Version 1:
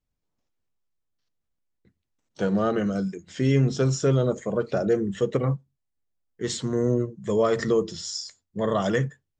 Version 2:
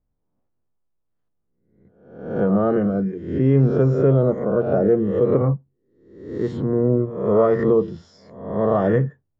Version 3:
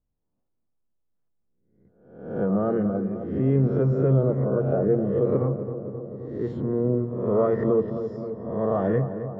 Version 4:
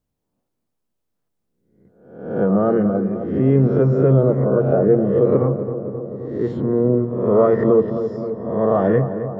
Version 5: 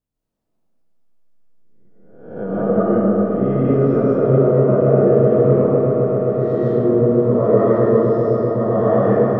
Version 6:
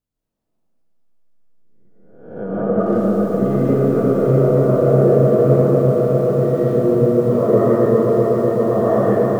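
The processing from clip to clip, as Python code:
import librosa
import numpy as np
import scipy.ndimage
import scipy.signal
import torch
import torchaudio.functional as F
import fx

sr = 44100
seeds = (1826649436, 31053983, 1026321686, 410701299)

y1 = fx.spec_swells(x, sr, rise_s=0.72)
y1 = scipy.signal.sosfilt(scipy.signal.butter(2, 1000.0, 'lowpass', fs=sr, output='sos'), y1)
y1 = y1 * librosa.db_to_amplitude(4.5)
y2 = fx.high_shelf(y1, sr, hz=2800.0, db=-10.0)
y2 = fx.echo_filtered(y2, sr, ms=264, feedback_pct=74, hz=1600.0, wet_db=-10)
y2 = y2 * librosa.db_to_amplitude(-5.0)
y3 = fx.low_shelf(y2, sr, hz=74.0, db=-10.5)
y3 = y3 * librosa.db_to_amplitude(7.5)
y4 = fx.echo_swell(y3, sr, ms=128, loudest=8, wet_db=-14.5)
y4 = fx.rev_freeverb(y4, sr, rt60_s=2.6, hf_ratio=0.55, predelay_ms=105, drr_db=-8.5)
y4 = y4 * librosa.db_to_amplitude(-8.0)
y5 = fx.echo_crushed(y4, sr, ms=646, feedback_pct=55, bits=7, wet_db=-6)
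y5 = y5 * librosa.db_to_amplitude(-1.0)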